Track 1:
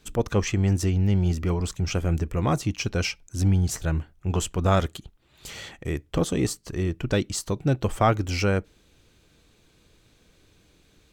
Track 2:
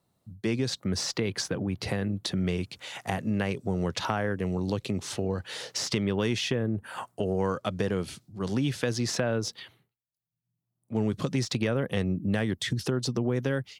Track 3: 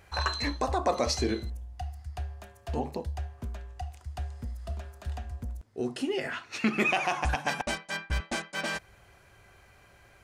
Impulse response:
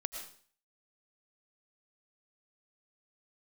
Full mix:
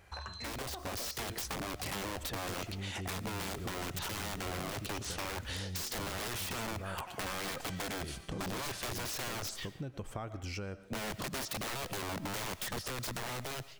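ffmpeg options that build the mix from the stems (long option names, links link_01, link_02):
-filter_complex "[0:a]adelay=2150,volume=-10dB,asplit=2[link_01][link_02];[link_02]volume=-16dB[link_03];[1:a]aeval=exprs='(mod(22.4*val(0)+1,2)-1)/22.4':channel_layout=same,dynaudnorm=framelen=420:gausssize=5:maxgain=11dB,volume=-11.5dB,asplit=2[link_04][link_05];[link_05]volume=-10dB[link_06];[2:a]acompressor=threshold=-37dB:ratio=6,volume=-3.5dB[link_07];[link_01][link_07]amix=inputs=2:normalize=0,acompressor=threshold=-37dB:ratio=6,volume=0dB[link_08];[3:a]atrim=start_sample=2205[link_09];[link_03][link_06]amix=inputs=2:normalize=0[link_10];[link_10][link_09]afir=irnorm=-1:irlink=0[link_11];[link_04][link_08][link_11]amix=inputs=3:normalize=0,acompressor=threshold=-36dB:ratio=6"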